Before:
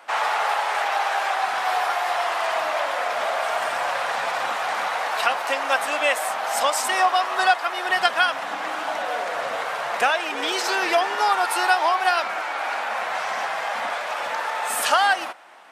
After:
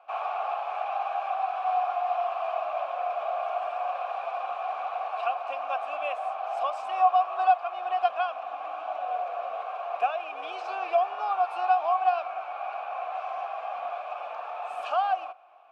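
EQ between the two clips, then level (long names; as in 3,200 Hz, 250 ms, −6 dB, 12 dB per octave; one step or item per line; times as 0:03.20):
formant filter a
high-pass filter 130 Hz
high-shelf EQ 7,000 Hz −7.5 dB
0.0 dB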